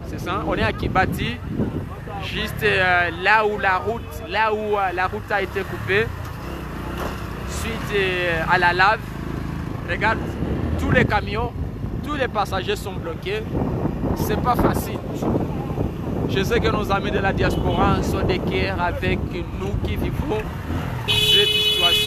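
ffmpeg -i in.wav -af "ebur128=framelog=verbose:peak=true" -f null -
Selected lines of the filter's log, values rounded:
Integrated loudness:
  I:         -21.4 LUFS
  Threshold: -31.4 LUFS
Loudness range:
  LRA:         3.7 LU
  Threshold: -41.8 LUFS
  LRA low:   -23.8 LUFS
  LRA high:  -20.1 LUFS
True peak:
  Peak:       -1.7 dBFS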